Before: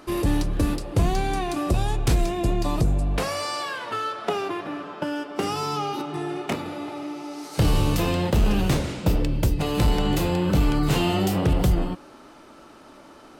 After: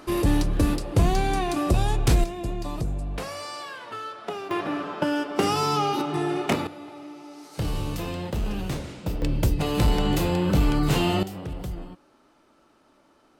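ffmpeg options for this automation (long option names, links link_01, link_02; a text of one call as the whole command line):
ffmpeg -i in.wav -af "asetnsamples=nb_out_samples=441:pad=0,asendcmd='2.24 volume volume -7dB;4.51 volume volume 3.5dB;6.67 volume volume -8dB;9.22 volume volume -0.5dB;11.23 volume volume -13dB',volume=1dB" out.wav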